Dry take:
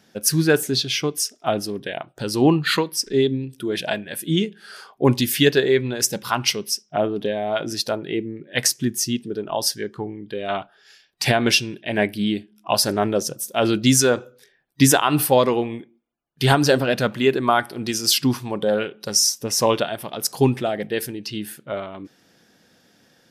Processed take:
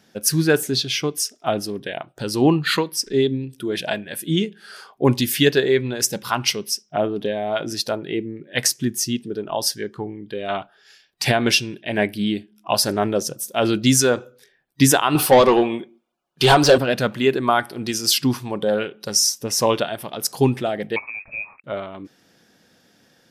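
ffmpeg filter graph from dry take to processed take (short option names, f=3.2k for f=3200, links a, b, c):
-filter_complex "[0:a]asettb=1/sr,asplit=3[a][b][c];[a]atrim=end=15.154[d];[b]atrim=start=15.15:end=16.78,asetpts=PTS-STARTPTS,afade=t=in:d=0.004:c=qsin,afade=t=out:st=1.626:d=0.004:c=qsin,equalizer=f=1.9k:w=2.5:g=-9.5,aecho=1:1:5.4:0.37,atrim=end_sample=71883,asplit=2[e][f];[f]highpass=f=720:p=1,volume=18dB,asoftclip=type=tanh:threshold=-3dB[g];[e][g]amix=inputs=2:normalize=0,lowpass=f=3.3k:p=1,volume=-6dB[h];[c]atrim=start=16.776[i];[d][h]acrossfade=d=0.004:c1=hsin:c2=qsin[j];[j][i]acrossfade=d=0.004:c1=qsin:c2=hsin,asettb=1/sr,asplit=3[k][l][m];[k]atrim=end=20.964[n];[l]atrim=start=20.96:end=21.64,asetpts=PTS-STARTPTS,afade=t=in:d=0.004:c=qsin,afade=t=out:st=0.676:d=0.004:c=qsin,highpass=100,aeval=exprs='sgn(val(0))*max(abs(val(0))-0.00299,0)':c=same,lowpass=f=2.3k:t=q:w=0.5098,lowpass=f=2.3k:t=q:w=0.6013,lowpass=f=2.3k:t=q:w=0.9,lowpass=f=2.3k:t=q:w=2.563,afreqshift=-2700[o];[m]atrim=start=21.636[p];[n][o]acrossfade=d=0.004:c1=hsin:c2=qsin[q];[q][p]acrossfade=d=0.004:c1=qsin:c2=hsin"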